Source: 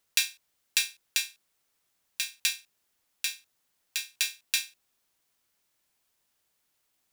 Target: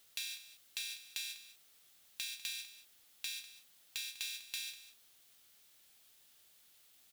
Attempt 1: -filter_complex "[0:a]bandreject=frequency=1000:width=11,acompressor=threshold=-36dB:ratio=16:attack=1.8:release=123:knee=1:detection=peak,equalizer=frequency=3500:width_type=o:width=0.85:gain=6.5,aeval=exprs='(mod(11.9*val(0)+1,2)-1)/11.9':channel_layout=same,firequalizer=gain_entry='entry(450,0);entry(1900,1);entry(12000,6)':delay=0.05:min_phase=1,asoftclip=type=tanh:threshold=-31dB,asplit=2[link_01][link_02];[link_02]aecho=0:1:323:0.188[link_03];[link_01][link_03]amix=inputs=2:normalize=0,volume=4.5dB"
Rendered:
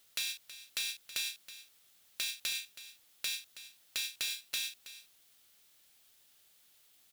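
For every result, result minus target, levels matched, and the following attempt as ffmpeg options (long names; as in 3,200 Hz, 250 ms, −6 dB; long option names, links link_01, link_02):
echo 125 ms late; downward compressor: peak gain reduction −7 dB
-filter_complex "[0:a]bandreject=frequency=1000:width=11,acompressor=threshold=-36dB:ratio=16:attack=1.8:release=123:knee=1:detection=peak,equalizer=frequency=3500:width_type=o:width=0.85:gain=6.5,aeval=exprs='(mod(11.9*val(0)+1,2)-1)/11.9':channel_layout=same,firequalizer=gain_entry='entry(450,0);entry(1900,1);entry(12000,6)':delay=0.05:min_phase=1,asoftclip=type=tanh:threshold=-31dB,asplit=2[link_01][link_02];[link_02]aecho=0:1:198:0.188[link_03];[link_01][link_03]amix=inputs=2:normalize=0,volume=4.5dB"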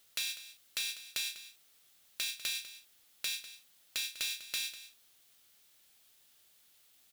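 downward compressor: peak gain reduction −7 dB
-filter_complex "[0:a]bandreject=frequency=1000:width=11,acompressor=threshold=-43.5dB:ratio=16:attack=1.8:release=123:knee=1:detection=peak,equalizer=frequency=3500:width_type=o:width=0.85:gain=6.5,aeval=exprs='(mod(11.9*val(0)+1,2)-1)/11.9':channel_layout=same,firequalizer=gain_entry='entry(450,0);entry(1900,1);entry(12000,6)':delay=0.05:min_phase=1,asoftclip=type=tanh:threshold=-31dB,asplit=2[link_01][link_02];[link_02]aecho=0:1:198:0.188[link_03];[link_01][link_03]amix=inputs=2:normalize=0,volume=4.5dB"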